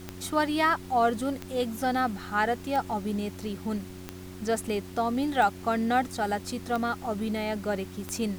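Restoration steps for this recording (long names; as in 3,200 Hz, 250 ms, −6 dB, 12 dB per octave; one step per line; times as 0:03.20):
click removal
hum removal 91.9 Hz, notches 4
noise reduction from a noise print 30 dB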